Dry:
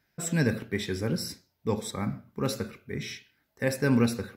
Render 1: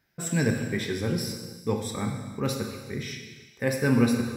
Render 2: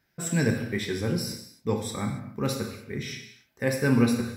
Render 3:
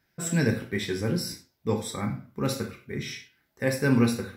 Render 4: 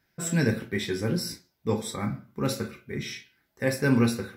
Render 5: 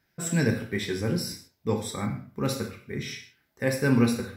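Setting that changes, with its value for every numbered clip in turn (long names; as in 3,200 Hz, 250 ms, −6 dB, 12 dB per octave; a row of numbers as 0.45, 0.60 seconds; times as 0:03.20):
reverb whose tail is shaped and stops, gate: 520, 310, 130, 80, 180 milliseconds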